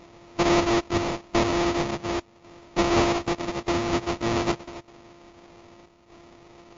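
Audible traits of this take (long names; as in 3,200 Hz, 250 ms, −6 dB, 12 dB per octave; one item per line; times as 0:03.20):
a buzz of ramps at a fixed pitch in blocks of 128 samples
chopped level 0.82 Hz, depth 60%, duty 80%
aliases and images of a low sample rate 1,600 Hz, jitter 20%
MP3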